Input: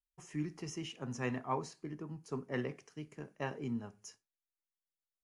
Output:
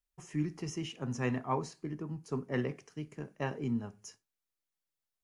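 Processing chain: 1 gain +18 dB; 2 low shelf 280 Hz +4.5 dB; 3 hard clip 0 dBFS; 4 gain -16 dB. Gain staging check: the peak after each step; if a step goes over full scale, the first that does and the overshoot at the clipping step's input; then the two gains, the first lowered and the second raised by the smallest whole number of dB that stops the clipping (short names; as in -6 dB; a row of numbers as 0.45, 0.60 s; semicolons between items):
-3.0, -2.5, -2.5, -18.5 dBFS; no overload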